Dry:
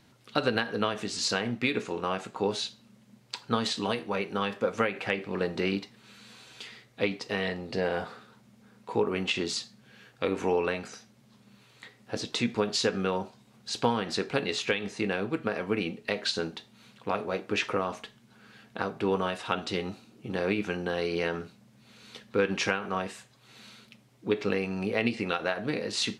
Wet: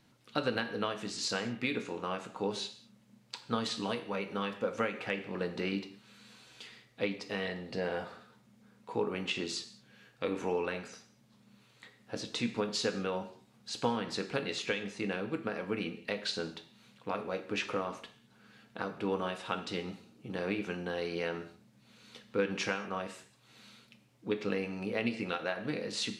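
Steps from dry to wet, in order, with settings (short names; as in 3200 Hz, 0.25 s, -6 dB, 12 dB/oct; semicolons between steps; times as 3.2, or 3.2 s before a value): non-linear reverb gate 0.24 s falling, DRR 9 dB; gain -6 dB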